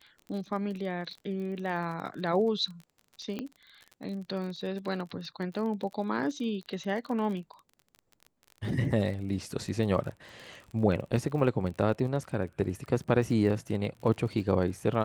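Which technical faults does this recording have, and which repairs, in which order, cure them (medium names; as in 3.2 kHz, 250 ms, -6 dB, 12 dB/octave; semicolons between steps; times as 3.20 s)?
crackle 37 per s -38 dBFS
3.39 s: pop -22 dBFS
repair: de-click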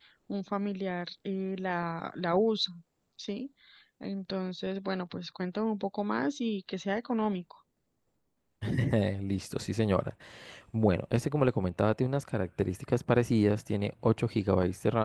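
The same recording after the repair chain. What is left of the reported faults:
3.39 s: pop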